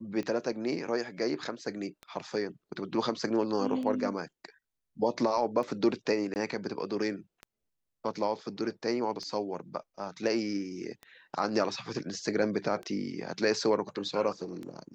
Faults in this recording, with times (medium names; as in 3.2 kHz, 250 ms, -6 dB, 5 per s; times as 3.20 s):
tick 33 1/3 rpm -27 dBFS
6.34–6.36 s: dropout 19 ms